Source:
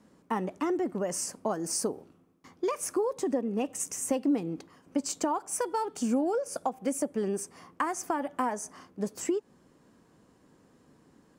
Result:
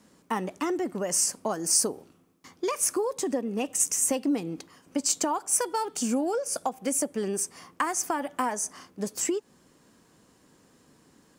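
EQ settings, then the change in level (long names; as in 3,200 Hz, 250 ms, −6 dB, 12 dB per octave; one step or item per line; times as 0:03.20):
high-shelf EQ 2,100 Hz +10 dB
0.0 dB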